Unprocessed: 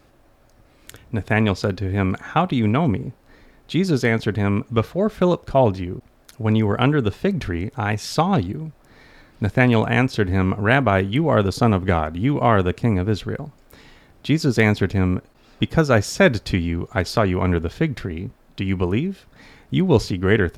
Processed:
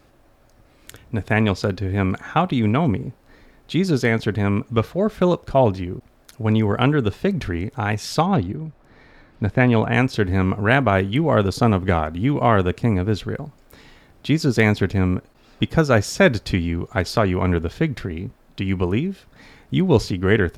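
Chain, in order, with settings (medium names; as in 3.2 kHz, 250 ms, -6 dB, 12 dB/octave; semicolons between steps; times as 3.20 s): 8.26–9.94 s: treble shelf 4.7 kHz -12 dB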